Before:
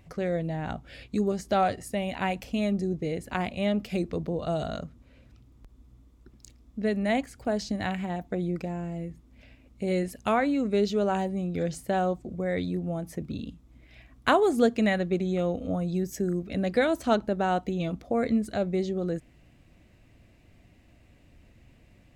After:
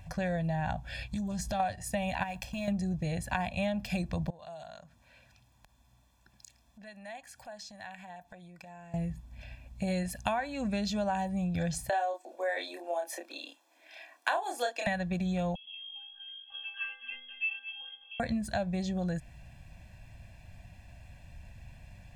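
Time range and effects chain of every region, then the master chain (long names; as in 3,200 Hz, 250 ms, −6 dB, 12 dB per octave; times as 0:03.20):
0:01.11–0:01.60: bass and treble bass +6 dB, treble +5 dB + downward compressor 3 to 1, threshold −35 dBFS + highs frequency-modulated by the lows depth 0.1 ms
0:02.23–0:02.68: mu-law and A-law mismatch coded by A + downward compressor 5 to 1, threshold −34 dBFS
0:04.30–0:08.94: high-pass filter 630 Hz 6 dB per octave + downward compressor 2.5 to 1, threshold −55 dBFS
0:11.89–0:14.87: Butterworth high-pass 300 Hz 72 dB per octave + double-tracking delay 29 ms −3.5 dB
0:15.55–0:18.20: voice inversion scrambler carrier 3,400 Hz + stiff-string resonator 240 Hz, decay 0.78 s, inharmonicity 0.03 + single-tap delay 222 ms −14 dB
whole clip: parametric band 280 Hz −11.5 dB 0.71 octaves; comb filter 1.2 ms, depth 88%; downward compressor 5 to 1, threshold −32 dBFS; level +3 dB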